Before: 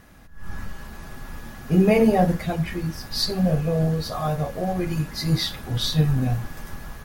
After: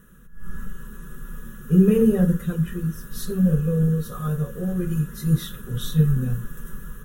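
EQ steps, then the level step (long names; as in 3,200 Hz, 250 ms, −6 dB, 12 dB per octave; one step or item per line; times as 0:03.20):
phaser with its sweep stopped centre 440 Hz, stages 8
notch filter 1,100 Hz, Q 14
phaser with its sweep stopped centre 2,000 Hz, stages 4
+3.5 dB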